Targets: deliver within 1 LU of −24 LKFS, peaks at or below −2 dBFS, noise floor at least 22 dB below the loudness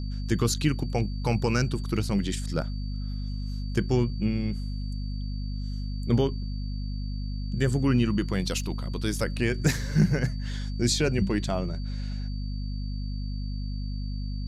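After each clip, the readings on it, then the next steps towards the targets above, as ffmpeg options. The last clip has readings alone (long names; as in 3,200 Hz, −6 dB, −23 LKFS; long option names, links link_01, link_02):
mains hum 50 Hz; hum harmonics up to 250 Hz; level of the hum −29 dBFS; interfering tone 4,600 Hz; level of the tone −48 dBFS; integrated loudness −29.0 LKFS; sample peak −10.5 dBFS; target loudness −24.0 LKFS
→ -af "bandreject=frequency=50:width_type=h:width=4,bandreject=frequency=100:width_type=h:width=4,bandreject=frequency=150:width_type=h:width=4,bandreject=frequency=200:width_type=h:width=4,bandreject=frequency=250:width_type=h:width=4"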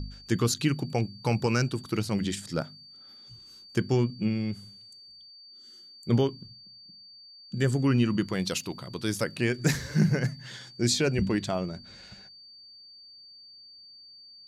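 mains hum none found; interfering tone 4,600 Hz; level of the tone −48 dBFS
→ -af "bandreject=frequency=4600:width=30"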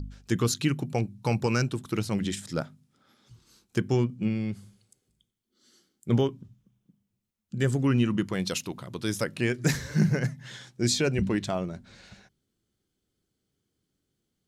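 interfering tone none found; integrated loudness −28.0 LKFS; sample peak −11.5 dBFS; target loudness −24.0 LKFS
→ -af "volume=4dB"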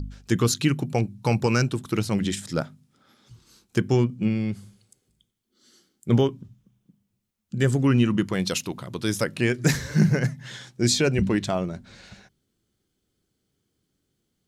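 integrated loudness −24.0 LKFS; sample peak −7.5 dBFS; background noise floor −77 dBFS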